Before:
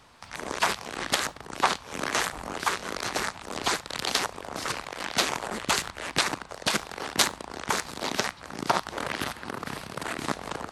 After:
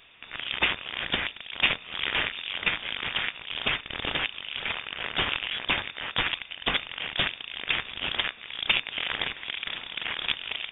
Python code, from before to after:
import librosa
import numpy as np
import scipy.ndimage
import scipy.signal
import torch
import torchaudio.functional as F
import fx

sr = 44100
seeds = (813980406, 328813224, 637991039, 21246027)

y = fx.tube_stage(x, sr, drive_db=18.0, bias=0.7)
y = fx.freq_invert(y, sr, carrier_hz=3600)
y = y * 10.0 ** (5.0 / 20.0)